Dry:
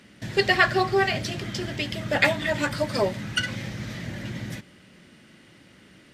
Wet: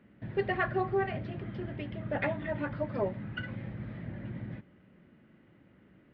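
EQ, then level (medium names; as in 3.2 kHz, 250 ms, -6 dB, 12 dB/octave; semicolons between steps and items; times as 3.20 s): distance through air 480 m; tape spacing loss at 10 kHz 23 dB; -5.0 dB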